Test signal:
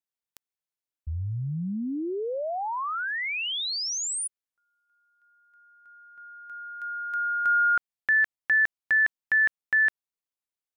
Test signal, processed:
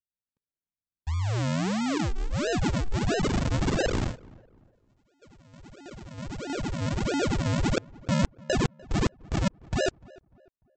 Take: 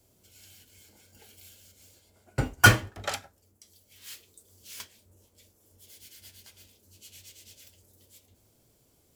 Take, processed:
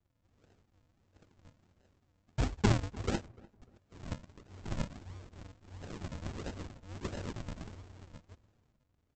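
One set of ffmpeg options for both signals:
-filter_complex "[0:a]lowpass=5500,dynaudnorm=f=260:g=11:m=5.62,equalizer=f=420:w=1.4:g=-10,aecho=1:1:2.5:0.4,areverse,acompressor=threshold=0.0398:ratio=5:attack=38:release=26:detection=rms,areverse,agate=range=0.355:threshold=0.00112:ratio=16:release=22:detection=peak,aresample=16000,acrusher=samples=28:mix=1:aa=0.000001:lfo=1:lforange=28:lforate=1.5,aresample=44100,asplit=2[s0][s1];[s1]adelay=297,lowpass=f=1500:p=1,volume=0.075,asplit=2[s2][s3];[s3]adelay=297,lowpass=f=1500:p=1,volume=0.37,asplit=2[s4][s5];[s5]adelay=297,lowpass=f=1500:p=1,volume=0.37[s6];[s0][s2][s4][s6]amix=inputs=4:normalize=0" -ar 44100 -c:a libmp3lame -b:a 56k

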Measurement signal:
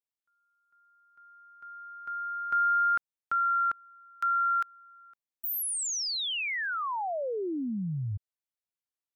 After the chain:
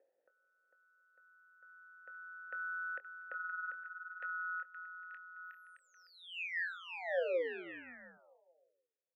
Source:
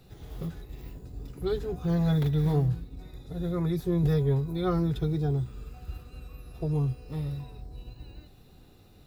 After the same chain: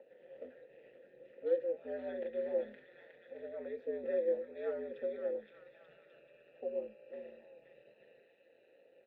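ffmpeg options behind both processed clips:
-filter_complex "[0:a]acrossover=split=1100[s0][s1];[s0]acompressor=mode=upward:threshold=0.00631:ratio=2.5:release=868:knee=2.83:detection=peak[s2];[s1]aecho=1:1:520|884|1139|1317|1442:0.631|0.398|0.251|0.158|0.1[s3];[s2][s3]amix=inputs=2:normalize=0,aeval=exprs='val(0)*sin(2*PI*88*n/s)':c=same,asplit=3[s4][s5][s6];[s4]bandpass=f=530:t=q:w=8,volume=1[s7];[s5]bandpass=f=1840:t=q:w=8,volume=0.501[s8];[s6]bandpass=f=2480:t=q:w=8,volume=0.355[s9];[s7][s8][s9]amix=inputs=3:normalize=0,acrossover=split=320 2700:gain=0.141 1 0.0794[s10][s11][s12];[s10][s11][s12]amix=inputs=3:normalize=0,asplit=2[s13][s14];[s14]adelay=24,volume=0.224[s15];[s13][s15]amix=inputs=2:normalize=0,bandreject=f=417.5:t=h:w=4,bandreject=f=835:t=h:w=4,volume=2.37"

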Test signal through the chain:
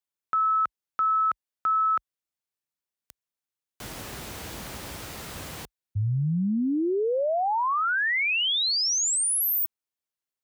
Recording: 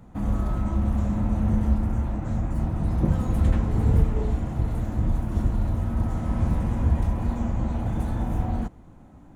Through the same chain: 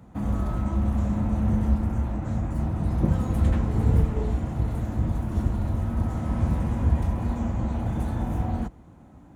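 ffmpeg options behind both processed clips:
-af "highpass=f=45:w=0.5412,highpass=f=45:w=1.3066"

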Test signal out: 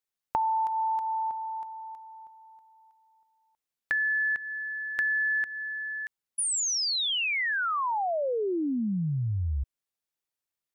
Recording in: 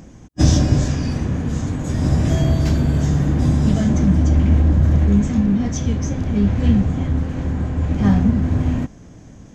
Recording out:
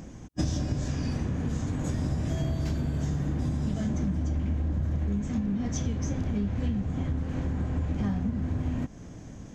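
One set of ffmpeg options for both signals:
-af "acompressor=threshold=0.0631:ratio=6,volume=0.794"

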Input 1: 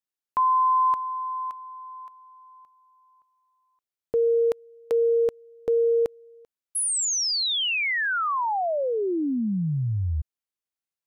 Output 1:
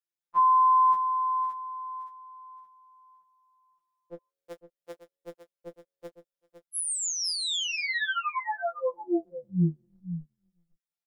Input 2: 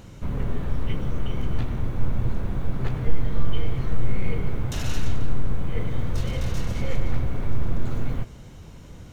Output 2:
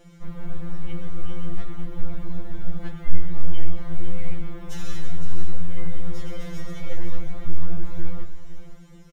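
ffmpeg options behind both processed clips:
-filter_complex "[0:a]asplit=2[s0][s1];[s1]adelay=18,volume=0.282[s2];[s0][s2]amix=inputs=2:normalize=0,aecho=1:1:509:0.299,afftfilt=real='re*2.83*eq(mod(b,8),0)':imag='im*2.83*eq(mod(b,8),0)':win_size=2048:overlap=0.75,volume=0.668"

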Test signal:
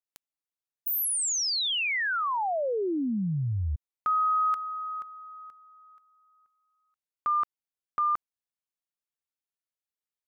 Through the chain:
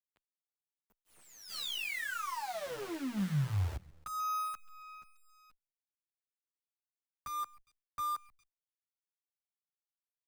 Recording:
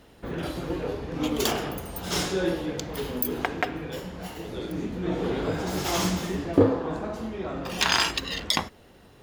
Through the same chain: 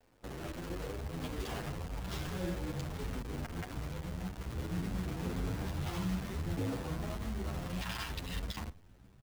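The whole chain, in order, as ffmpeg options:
-filter_complex "[0:a]asubboost=boost=7.5:cutoff=150,acrossover=split=200|3400[s0][s1][s2];[s0]acompressor=threshold=0.0794:ratio=6:attack=34:release=279:knee=2.83:detection=peak[s3];[s3][s1][s2]amix=inputs=3:normalize=0,alimiter=limit=0.15:level=0:latency=1:release=117,aecho=1:1:136|272|408:0.126|0.0415|0.0137,adynamicsmooth=sensitivity=4.5:basefreq=1200,acrusher=bits=6:dc=4:mix=0:aa=0.000001,asplit=2[s4][s5];[s5]adelay=9.3,afreqshift=1.7[s6];[s4][s6]amix=inputs=2:normalize=1,volume=0.398"

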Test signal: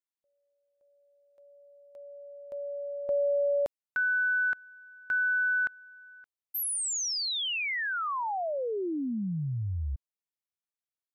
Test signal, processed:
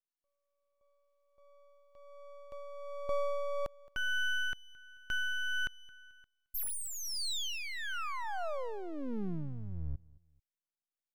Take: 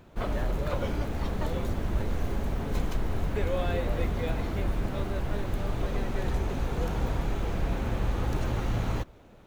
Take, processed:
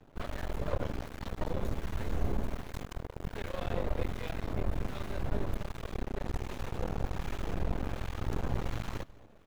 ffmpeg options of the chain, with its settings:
-filter_complex "[0:a]acrossover=split=1100[s0][s1];[s0]aeval=exprs='val(0)*(1-0.5/2+0.5/2*cos(2*PI*1.3*n/s))':c=same[s2];[s1]aeval=exprs='val(0)*(1-0.5/2-0.5/2*cos(2*PI*1.3*n/s))':c=same[s3];[s2][s3]amix=inputs=2:normalize=0,aeval=exprs='max(val(0),0)':c=same,aecho=1:1:219|438:0.0708|0.0241"

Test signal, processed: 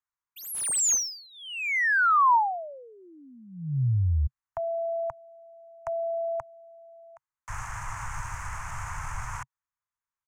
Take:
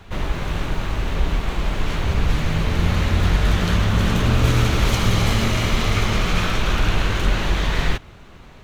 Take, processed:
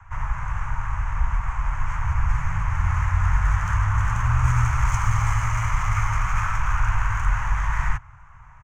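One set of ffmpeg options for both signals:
-filter_complex "[0:a]firequalizer=gain_entry='entry(130,0);entry(200,-25);entry(410,-28);entry(940,5);entry(2100,-2);entry(3900,-27);entry(6400,3);entry(13000,-7)':delay=0.05:min_phase=1,acrossover=split=170|520|1700[s0][s1][s2][s3];[s3]adynamicsmooth=sensitivity=7.5:basefreq=4600[s4];[s0][s1][s2][s4]amix=inputs=4:normalize=0,volume=0.794"

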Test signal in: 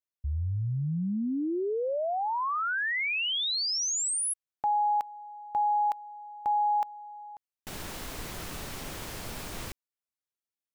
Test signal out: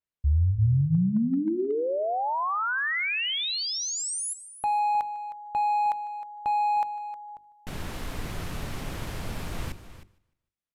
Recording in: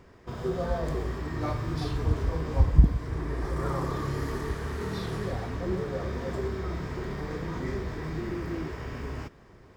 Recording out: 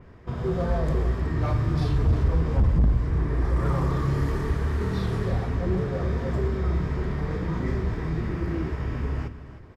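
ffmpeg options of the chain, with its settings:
-filter_complex "[0:a]bandreject=f=50:t=h:w=6,bandreject=f=100:t=h:w=6,bandreject=f=150:t=h:w=6,bandreject=f=200:t=h:w=6,bandreject=f=250:t=h:w=6,bandreject=f=300:t=h:w=6,bandreject=f=350:t=h:w=6,bandreject=f=400:t=h:w=6,asplit=2[s0][s1];[s1]aecho=0:1:151|302|453:0.0841|0.032|0.0121[s2];[s0][s2]amix=inputs=2:normalize=0,aresample=32000,aresample=44100,volume=16.8,asoftclip=hard,volume=0.0596,bass=f=250:g=7,treble=f=4000:g=-8,asplit=2[s3][s4];[s4]aecho=0:1:312:0.2[s5];[s3][s5]amix=inputs=2:normalize=0,adynamicequalizer=threshold=0.00447:dfrequency=4300:dqfactor=0.7:tfrequency=4300:tqfactor=0.7:attack=5:release=100:ratio=0.375:range=2:mode=boostabove:tftype=highshelf,volume=1.26"

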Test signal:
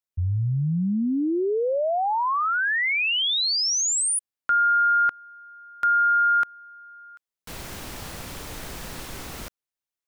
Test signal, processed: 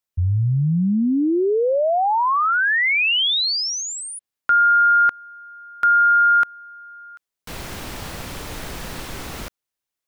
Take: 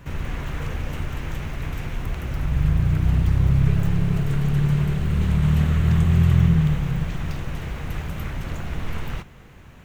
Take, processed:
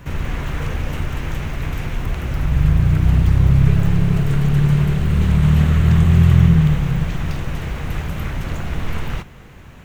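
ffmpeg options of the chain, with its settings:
-filter_complex "[0:a]acrossover=split=4800[s0][s1];[s1]acompressor=threshold=0.00794:ratio=4:attack=1:release=60[s2];[s0][s2]amix=inputs=2:normalize=0,volume=1.78"

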